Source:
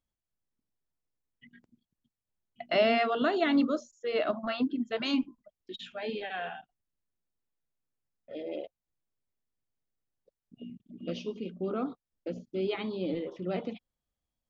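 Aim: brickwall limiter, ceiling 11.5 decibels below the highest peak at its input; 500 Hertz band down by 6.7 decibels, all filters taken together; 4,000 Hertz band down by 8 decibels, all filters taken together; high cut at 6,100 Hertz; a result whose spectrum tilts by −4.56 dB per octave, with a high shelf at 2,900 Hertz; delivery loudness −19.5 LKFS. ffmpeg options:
ffmpeg -i in.wav -af "lowpass=6100,equalizer=frequency=500:width_type=o:gain=-9,highshelf=frequency=2900:gain=-5.5,equalizer=frequency=4000:width_type=o:gain=-7,volume=22dB,alimiter=limit=-9.5dB:level=0:latency=1" out.wav

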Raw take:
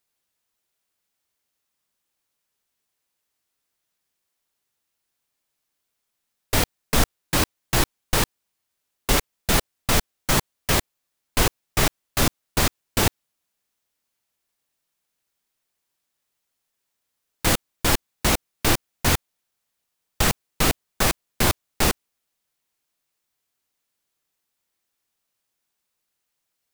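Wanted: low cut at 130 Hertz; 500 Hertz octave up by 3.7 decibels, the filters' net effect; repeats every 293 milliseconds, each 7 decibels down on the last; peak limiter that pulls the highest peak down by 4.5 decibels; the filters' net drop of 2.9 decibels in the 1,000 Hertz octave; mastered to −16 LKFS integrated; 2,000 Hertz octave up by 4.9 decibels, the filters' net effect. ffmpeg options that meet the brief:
ffmpeg -i in.wav -af "highpass=130,equalizer=frequency=500:width_type=o:gain=6.5,equalizer=frequency=1000:width_type=o:gain=-8.5,equalizer=frequency=2000:width_type=o:gain=8,alimiter=limit=-9dB:level=0:latency=1,aecho=1:1:293|586|879|1172|1465:0.447|0.201|0.0905|0.0407|0.0183,volume=7dB" out.wav

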